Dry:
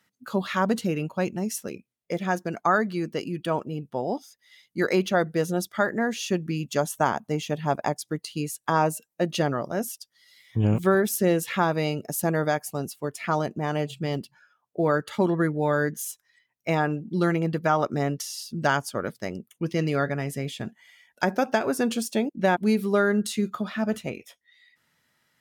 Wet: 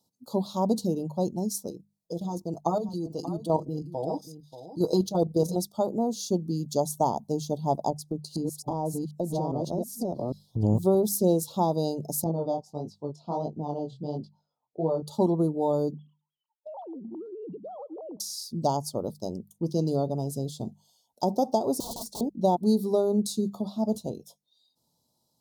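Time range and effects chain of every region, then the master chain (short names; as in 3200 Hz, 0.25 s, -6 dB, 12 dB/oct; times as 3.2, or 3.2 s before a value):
1.7–5.56 comb 6.3 ms, depth 88% + level quantiser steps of 10 dB + echo 0.584 s -13 dB
7.9–10.63 reverse delay 0.404 s, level -1 dB + tilt shelf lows +5.5 dB, about 1100 Hz + compressor, threshold -24 dBFS
12.24–15.03 air absorption 170 m + chorus 1.5 Hz, delay 18.5 ms, depth 5.2 ms
15.94–18.2 sine-wave speech + compressor 8:1, threshold -36 dBFS + echo 0.113 s -23.5 dB
21.8–22.21 high shelf 2200 Hz -7.5 dB + wrapped overs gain 29 dB
whole clip: elliptic band-stop 900–4100 Hz, stop band 70 dB; notches 50/100/150/200 Hz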